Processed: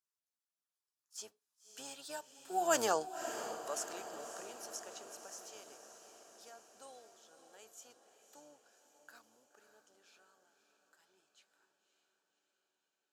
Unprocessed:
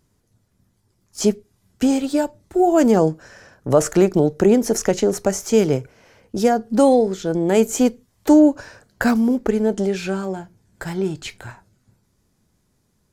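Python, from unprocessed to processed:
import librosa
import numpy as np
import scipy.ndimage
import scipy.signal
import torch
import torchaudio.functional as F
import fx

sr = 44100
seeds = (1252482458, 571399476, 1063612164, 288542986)

p1 = fx.octave_divider(x, sr, octaves=1, level_db=-3.0)
p2 = fx.doppler_pass(p1, sr, speed_mps=8, closest_m=1.5, pass_at_s=2.83)
p3 = scipy.signal.sosfilt(scipy.signal.butter(2, 1300.0, 'highpass', fs=sr, output='sos'), p2)
p4 = fx.peak_eq(p3, sr, hz=2100.0, db=-12.0, octaves=0.32)
y = p4 + fx.echo_diffused(p4, sr, ms=572, feedback_pct=61, wet_db=-10, dry=0)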